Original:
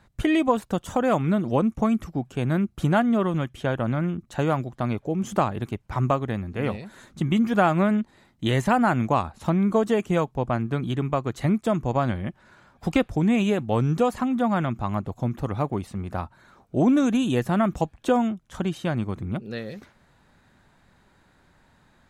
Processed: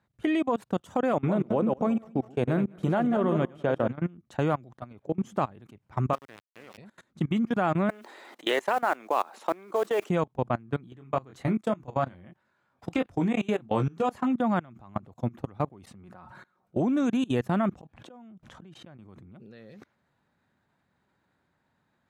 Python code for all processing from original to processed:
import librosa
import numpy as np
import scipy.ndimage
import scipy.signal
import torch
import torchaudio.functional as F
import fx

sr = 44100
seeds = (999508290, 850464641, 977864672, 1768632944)

y = fx.chain(x, sr, fx.reverse_delay_fb(ms=102, feedback_pct=48, wet_db=-8),
    fx.highpass(hz=79.0, slope=6),
    fx.peak_eq(hz=500.0, db=6.5, octaves=1.4), at=(1.13, 3.88))
y = fx.chain(y, sr, fx.weighting(curve='A'),
    fx.sample_gate(floor_db=-32.0), at=(6.13, 6.78))
y = fx.chain(y, sr, fx.highpass(hz=380.0, slope=24),
    fx.mod_noise(seeds[0], snr_db=22),
    fx.env_flatten(amount_pct=50), at=(7.89, 10.1))
y = fx.chain(y, sr, fx.low_shelf(hz=340.0, db=-3.5),
    fx.doubler(ms=23.0, db=-6), at=(10.95, 14.31))
y = fx.chain(y, sr, fx.peak_eq(hz=1400.0, db=4.0, octaves=1.2),
    fx.comb(ms=5.5, depth=0.45),
    fx.sustainer(db_per_s=98.0), at=(16.03, 16.8))
y = fx.chain(y, sr, fx.lowpass(hz=4000.0, slope=6),
    fx.gate_flip(shuts_db=-23.0, range_db=-35),
    fx.env_flatten(amount_pct=70), at=(17.71, 18.99))
y = fx.level_steps(y, sr, step_db=24)
y = scipy.signal.sosfilt(scipy.signal.butter(2, 93.0, 'highpass', fs=sr, output='sos'), y)
y = fx.high_shelf(y, sr, hz=4400.0, db=-7.0)